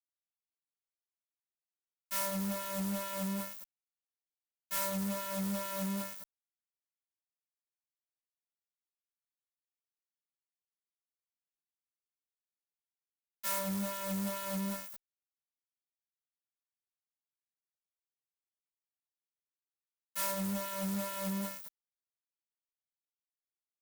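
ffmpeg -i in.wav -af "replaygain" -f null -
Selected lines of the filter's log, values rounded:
track_gain = +21.0 dB
track_peak = 0.033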